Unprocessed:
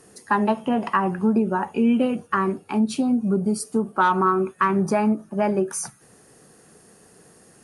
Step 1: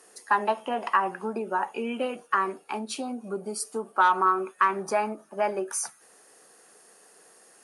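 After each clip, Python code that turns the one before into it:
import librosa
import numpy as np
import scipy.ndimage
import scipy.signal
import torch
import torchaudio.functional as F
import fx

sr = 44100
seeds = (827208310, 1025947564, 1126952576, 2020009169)

y = scipy.signal.sosfilt(scipy.signal.butter(2, 530.0, 'highpass', fs=sr, output='sos'), x)
y = F.gain(torch.from_numpy(y), -1.0).numpy()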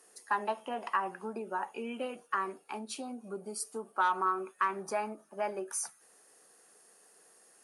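y = fx.high_shelf(x, sr, hz=7800.0, db=5.0)
y = F.gain(torch.from_numpy(y), -8.0).numpy()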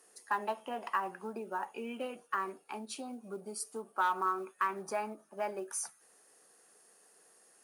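y = fx.quant_float(x, sr, bits=4)
y = F.gain(torch.from_numpy(y), -2.0).numpy()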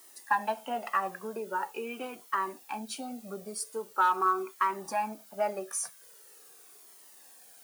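y = fx.dmg_noise_colour(x, sr, seeds[0], colour='blue', level_db=-60.0)
y = fx.comb_cascade(y, sr, direction='falling', hz=0.43)
y = F.gain(torch.from_numpy(y), 8.5).numpy()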